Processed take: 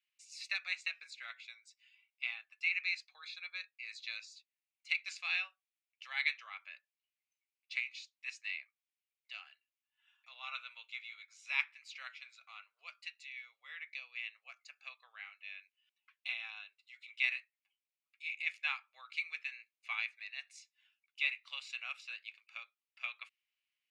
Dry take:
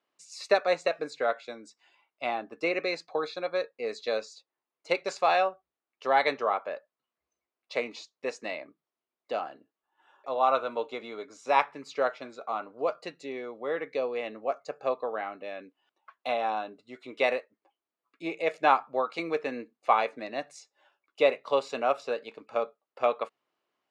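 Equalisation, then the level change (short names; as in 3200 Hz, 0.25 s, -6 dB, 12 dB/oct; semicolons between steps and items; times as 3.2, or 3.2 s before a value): ladder high-pass 2100 Hz, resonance 55%; +2.5 dB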